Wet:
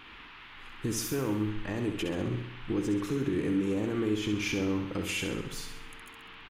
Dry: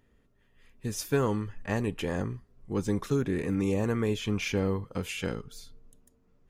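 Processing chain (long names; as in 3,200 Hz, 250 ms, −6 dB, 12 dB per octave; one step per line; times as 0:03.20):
parametric band 320 Hz +13.5 dB 0.34 octaves
downward compressor, threshold −32 dBFS, peak gain reduction 13.5 dB
brickwall limiter −29 dBFS, peak gain reduction 9.5 dB
noise in a band 850–3,200 Hz −57 dBFS
on a send: repeating echo 66 ms, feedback 53%, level −7 dB
on the sum: level +6 dB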